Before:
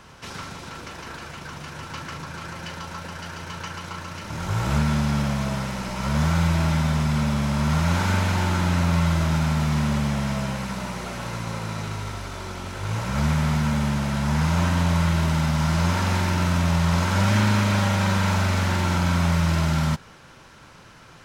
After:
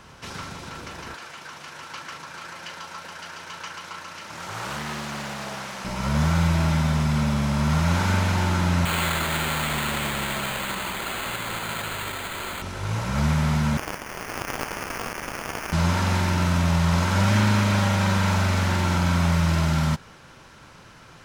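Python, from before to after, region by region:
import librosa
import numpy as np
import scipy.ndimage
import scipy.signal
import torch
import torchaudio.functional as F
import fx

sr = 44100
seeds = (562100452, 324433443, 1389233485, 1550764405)

y = fx.chain(x, sr, fx.overload_stage(gain_db=17.0),
    fx.highpass(hz=710.0, slope=6),
    fx.doppler_dist(depth_ms=0.42), at=(1.14, 5.85))
y = fx.chain(y, sr, fx.tilt_shelf(db=-10.0, hz=870.0),
    fx.resample_bad(factor=8, down='none', up='hold'), at=(8.85, 12.62))
y = fx.chain(y, sr, fx.halfwave_hold(),
    fx.cheby1_highpass(hz=2500.0, order=3),
    fx.sample_hold(seeds[0], rate_hz=3900.0, jitter_pct=0), at=(13.77, 15.73))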